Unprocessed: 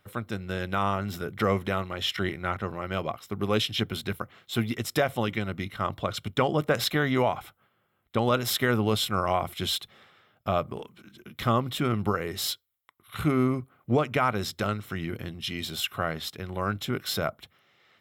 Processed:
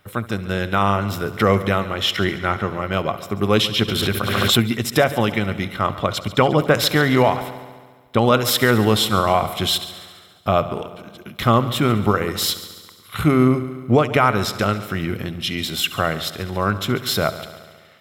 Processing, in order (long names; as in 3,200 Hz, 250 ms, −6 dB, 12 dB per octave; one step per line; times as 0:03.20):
echo machine with several playback heads 70 ms, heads first and second, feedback 61%, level −18 dB
0:03.88–0:04.60: background raised ahead of every attack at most 24 dB per second
level +8.5 dB